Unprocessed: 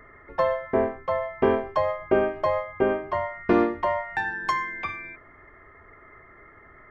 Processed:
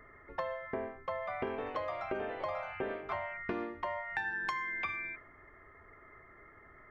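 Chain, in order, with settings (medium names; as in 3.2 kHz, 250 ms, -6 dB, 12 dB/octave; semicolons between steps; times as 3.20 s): 1.06–3.43 s: ever faster or slower copies 198 ms, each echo +2 st, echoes 3, each echo -6 dB; compression 4:1, threshold -30 dBFS, peak gain reduction 12.5 dB; dynamic bell 2.5 kHz, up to +6 dB, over -48 dBFS, Q 0.71; trim -6.5 dB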